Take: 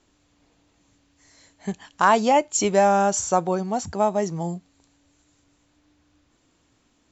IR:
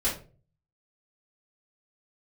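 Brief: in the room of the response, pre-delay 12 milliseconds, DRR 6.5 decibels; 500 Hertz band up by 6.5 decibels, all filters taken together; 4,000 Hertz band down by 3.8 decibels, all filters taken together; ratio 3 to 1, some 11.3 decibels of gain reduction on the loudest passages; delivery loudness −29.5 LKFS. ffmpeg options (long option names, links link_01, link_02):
-filter_complex "[0:a]equalizer=frequency=500:width_type=o:gain=8.5,equalizer=frequency=4000:width_type=o:gain=-6,acompressor=threshold=-24dB:ratio=3,asplit=2[link_01][link_02];[1:a]atrim=start_sample=2205,adelay=12[link_03];[link_02][link_03]afir=irnorm=-1:irlink=0,volume=-15.5dB[link_04];[link_01][link_04]amix=inputs=2:normalize=0,volume=-3.5dB"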